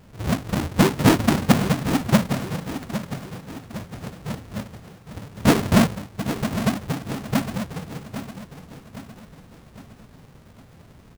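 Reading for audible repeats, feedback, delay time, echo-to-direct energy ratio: 4, 48%, 808 ms, −10.0 dB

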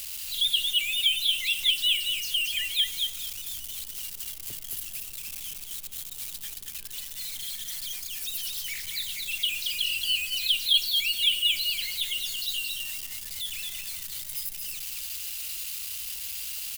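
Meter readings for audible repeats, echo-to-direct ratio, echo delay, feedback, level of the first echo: 2, −4.5 dB, 226 ms, 19%, −4.5 dB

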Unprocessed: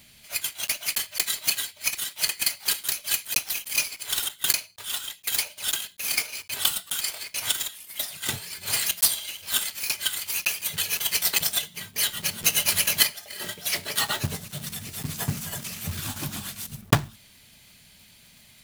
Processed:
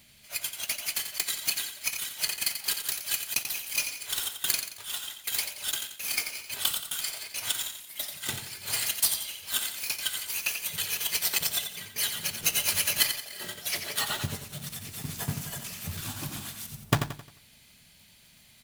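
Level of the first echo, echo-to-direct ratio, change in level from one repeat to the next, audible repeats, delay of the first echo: −8.0 dB, −7.5 dB, −8.0 dB, 4, 88 ms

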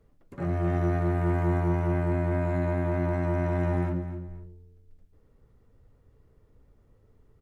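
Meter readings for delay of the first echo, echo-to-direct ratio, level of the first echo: 254 ms, −12.0 dB, −12.5 dB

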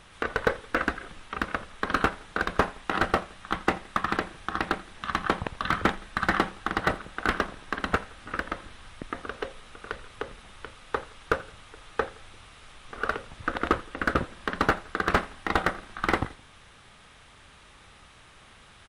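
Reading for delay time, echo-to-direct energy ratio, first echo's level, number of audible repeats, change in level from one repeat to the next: 84 ms, −21.5 dB, −22.5 dB, 2, −6.0 dB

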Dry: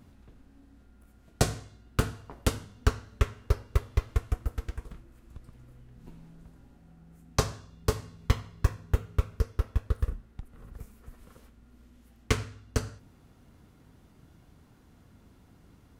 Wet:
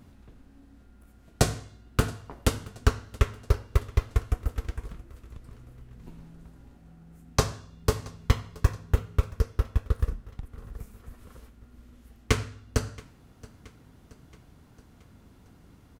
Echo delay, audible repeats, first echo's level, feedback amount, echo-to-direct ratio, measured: 675 ms, 3, −22.0 dB, 55%, −20.5 dB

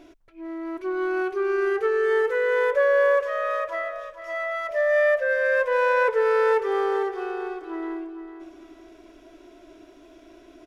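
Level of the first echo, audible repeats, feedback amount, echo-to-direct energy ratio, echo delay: −11.0 dB, 3, 33%, −10.5 dB, 451 ms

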